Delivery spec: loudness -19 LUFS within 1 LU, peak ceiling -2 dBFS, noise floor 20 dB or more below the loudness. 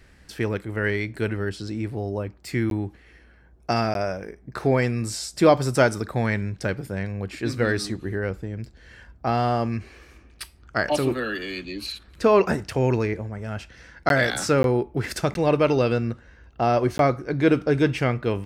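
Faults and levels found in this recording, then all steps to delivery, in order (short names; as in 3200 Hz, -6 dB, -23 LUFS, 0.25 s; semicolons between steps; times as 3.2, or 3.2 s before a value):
dropouts 6; longest dropout 12 ms; loudness -24.0 LUFS; peak -3.5 dBFS; loudness target -19.0 LUFS
-> interpolate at 2.7/3.94/14.09/14.63/15.34/16.98, 12 ms; gain +5 dB; limiter -2 dBFS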